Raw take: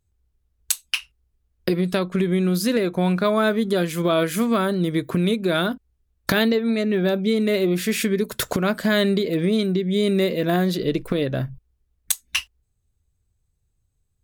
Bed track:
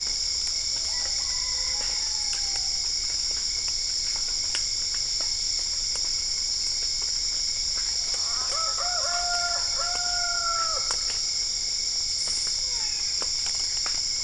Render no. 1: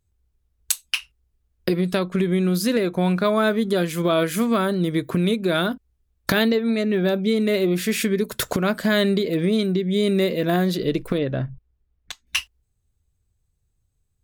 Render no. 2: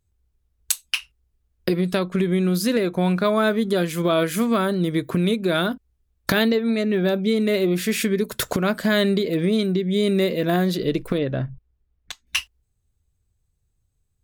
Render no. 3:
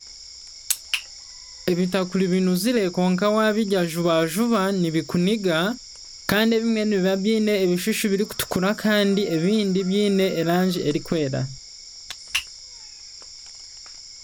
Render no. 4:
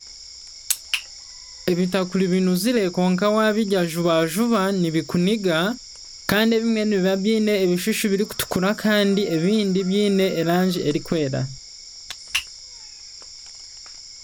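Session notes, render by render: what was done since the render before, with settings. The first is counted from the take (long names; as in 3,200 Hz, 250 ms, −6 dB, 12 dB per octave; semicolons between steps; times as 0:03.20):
0:11.18–0:12.27: high-frequency loss of the air 210 metres
no processing that can be heard
mix in bed track −14 dB
level +1 dB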